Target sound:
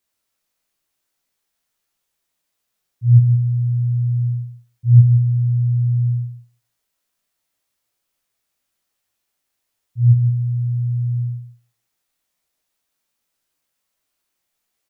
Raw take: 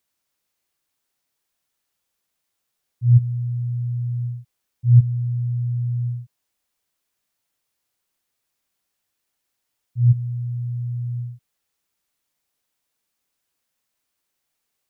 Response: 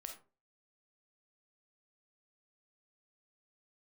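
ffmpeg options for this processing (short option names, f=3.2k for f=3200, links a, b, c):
-filter_complex "[0:a]aecho=1:1:165:0.316,asplit=2[a][b];[1:a]atrim=start_sample=2205,adelay=18[c];[b][c]afir=irnorm=-1:irlink=0,volume=5.5dB[d];[a][d]amix=inputs=2:normalize=0,volume=-2.5dB"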